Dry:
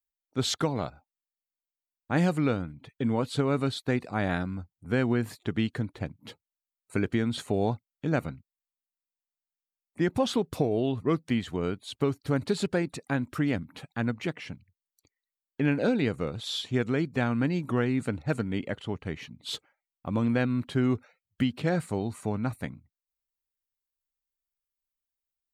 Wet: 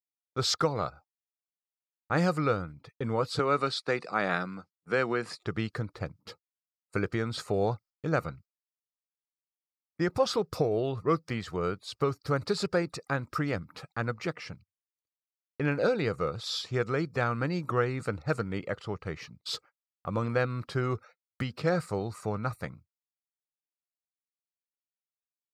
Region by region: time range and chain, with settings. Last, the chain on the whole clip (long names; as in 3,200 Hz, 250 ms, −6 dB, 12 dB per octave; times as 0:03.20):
0:03.39–0:05.40: high-pass filter 160 Hz 24 dB per octave + parametric band 2,700 Hz +4.5 dB 1.5 octaves + bad sample-rate conversion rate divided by 2×, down none, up filtered
whole clip: thirty-one-band graphic EQ 250 Hz −12 dB, 500 Hz +5 dB, 1,250 Hz +11 dB, 3,150 Hz −6 dB, 5,000 Hz +11 dB, 10,000 Hz −4 dB; noise gate −49 dBFS, range −33 dB; level −1.5 dB